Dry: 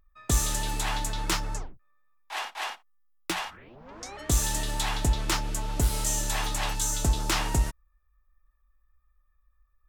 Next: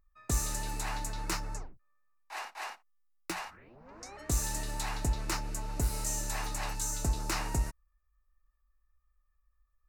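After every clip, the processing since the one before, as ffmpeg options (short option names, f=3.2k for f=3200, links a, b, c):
-af "equalizer=f=3.3k:t=o:w=0.24:g=-14,volume=-6dB"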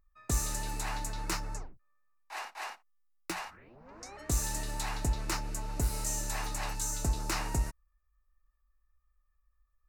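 -af anull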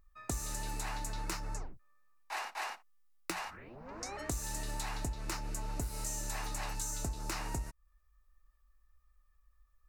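-af "acompressor=threshold=-40dB:ratio=6,volume=5dB"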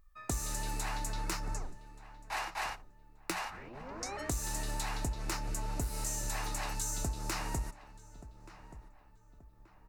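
-filter_complex "[0:a]asplit=2[a][b];[b]adelay=1179,lowpass=f=2k:p=1,volume=-15.5dB,asplit=2[c][d];[d]adelay=1179,lowpass=f=2k:p=1,volume=0.41,asplit=2[e][f];[f]adelay=1179,lowpass=f=2k:p=1,volume=0.41,asplit=2[g][h];[h]adelay=1179,lowpass=f=2k:p=1,volume=0.41[i];[a][c][e][g][i]amix=inputs=5:normalize=0,asplit=2[j][k];[k]volume=32dB,asoftclip=hard,volume=-32dB,volume=-10.5dB[l];[j][l]amix=inputs=2:normalize=0"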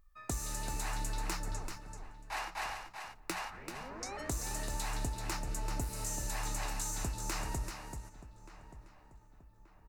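-af "aecho=1:1:386:0.447,volume=-2dB"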